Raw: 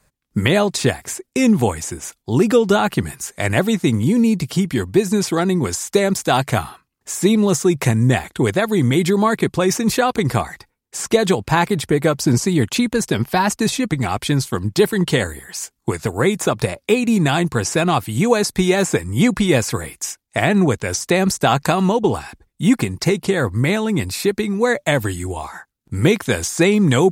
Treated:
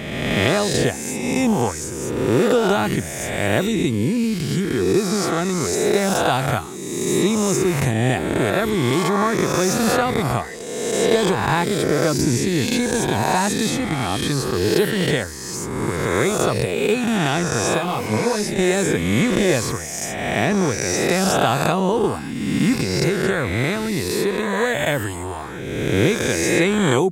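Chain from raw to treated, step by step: spectral swells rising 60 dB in 1.68 s; 17.77–18.57 detuned doubles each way 19 cents -> 38 cents; gain -6 dB

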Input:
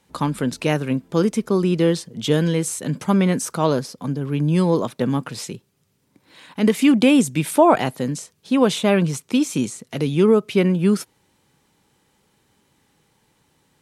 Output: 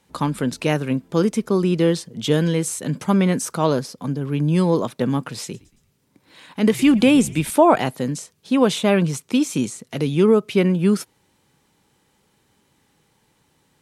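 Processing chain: 5.42–7.5 frequency-shifting echo 0.114 s, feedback 46%, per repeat -85 Hz, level -21 dB

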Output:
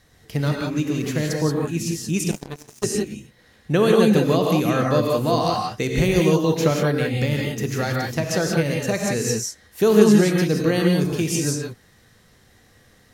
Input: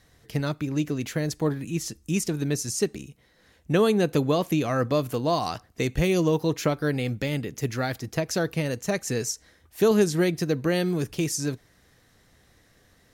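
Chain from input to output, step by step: non-linear reverb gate 0.2 s rising, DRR -0.5 dB; 2.31–2.84 power-law curve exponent 3; gain +2 dB

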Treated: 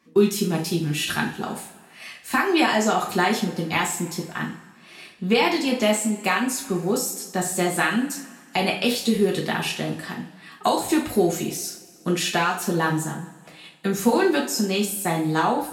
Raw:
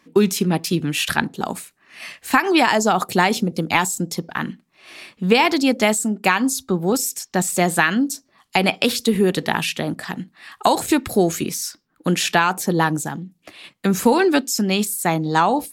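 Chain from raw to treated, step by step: two-slope reverb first 0.36 s, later 1.8 s, from -18 dB, DRR -2 dB; gain -8 dB

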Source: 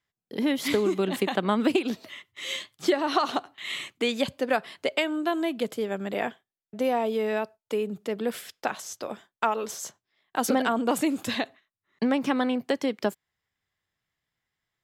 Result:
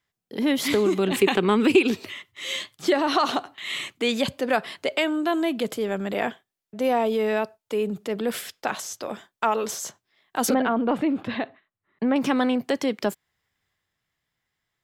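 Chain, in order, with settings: 1.11–2.14 thirty-one-band EQ 100 Hz +9 dB, 400 Hz +9 dB, 630 Hz -9 dB, 2500 Hz +8 dB, 8000 Hz +4 dB; transient shaper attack -3 dB, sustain +3 dB; 10.54–12.16 air absorption 410 m; gain +3.5 dB

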